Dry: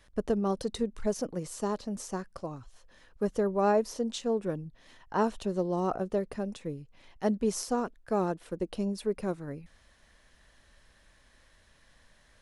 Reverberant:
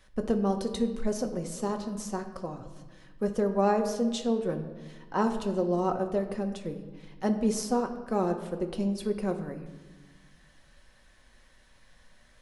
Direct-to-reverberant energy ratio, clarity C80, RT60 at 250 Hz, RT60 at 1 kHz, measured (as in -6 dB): 4.0 dB, 11.5 dB, 1.9 s, 1.2 s